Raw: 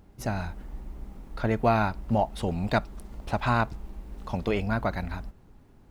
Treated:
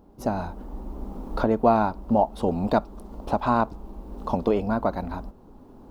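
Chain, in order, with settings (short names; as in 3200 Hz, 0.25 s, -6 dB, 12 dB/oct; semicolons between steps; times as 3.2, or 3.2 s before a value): recorder AGC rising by 8.1 dB/s; graphic EQ 125/250/500/1000/2000/8000 Hz -5/+8/+6/+8/-10/-4 dB; gain -2.5 dB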